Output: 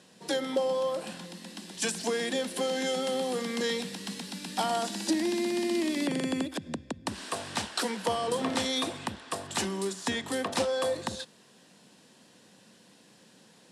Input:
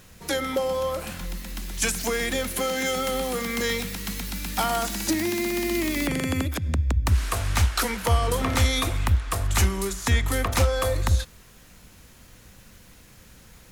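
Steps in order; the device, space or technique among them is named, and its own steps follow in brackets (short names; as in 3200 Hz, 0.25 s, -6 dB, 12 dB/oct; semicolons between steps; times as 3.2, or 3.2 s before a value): television speaker (speaker cabinet 180–9000 Hz, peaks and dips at 1300 Hz -9 dB, 2200 Hz -9 dB, 6500 Hz -7 dB); gain -2 dB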